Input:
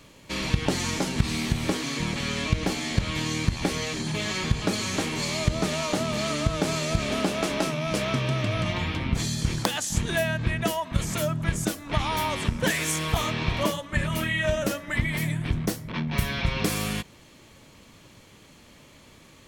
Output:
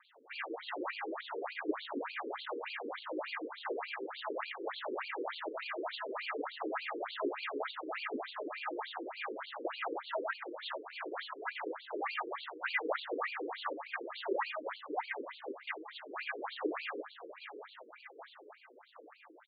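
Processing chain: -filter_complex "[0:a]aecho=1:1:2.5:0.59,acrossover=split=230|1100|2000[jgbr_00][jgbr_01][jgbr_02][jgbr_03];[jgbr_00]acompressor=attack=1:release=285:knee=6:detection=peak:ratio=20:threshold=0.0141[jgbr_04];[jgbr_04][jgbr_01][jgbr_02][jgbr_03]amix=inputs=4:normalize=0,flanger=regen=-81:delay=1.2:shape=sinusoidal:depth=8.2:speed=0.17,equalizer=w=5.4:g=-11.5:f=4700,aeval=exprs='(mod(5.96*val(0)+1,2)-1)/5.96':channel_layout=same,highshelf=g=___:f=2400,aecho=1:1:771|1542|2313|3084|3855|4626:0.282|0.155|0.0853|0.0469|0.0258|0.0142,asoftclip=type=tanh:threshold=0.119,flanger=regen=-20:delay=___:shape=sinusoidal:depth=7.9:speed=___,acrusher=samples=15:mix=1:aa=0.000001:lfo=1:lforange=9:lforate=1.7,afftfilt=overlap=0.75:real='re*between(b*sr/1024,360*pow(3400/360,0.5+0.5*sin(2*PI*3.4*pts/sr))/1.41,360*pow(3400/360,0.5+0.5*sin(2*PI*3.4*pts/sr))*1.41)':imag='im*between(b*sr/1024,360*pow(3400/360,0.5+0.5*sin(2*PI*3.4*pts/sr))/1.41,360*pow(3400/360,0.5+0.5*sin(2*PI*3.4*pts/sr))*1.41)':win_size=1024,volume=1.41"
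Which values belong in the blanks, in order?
7, 0.4, 0.61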